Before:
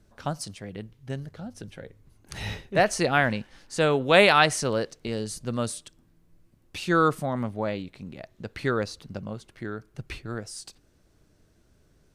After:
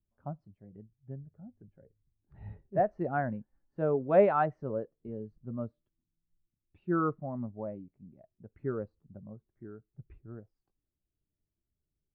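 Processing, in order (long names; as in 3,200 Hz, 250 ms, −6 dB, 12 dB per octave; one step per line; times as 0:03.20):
low-pass filter 1,200 Hz 12 dB per octave
notch filter 490 Hz, Q 12
every bin expanded away from the loudest bin 1.5 to 1
level −3.5 dB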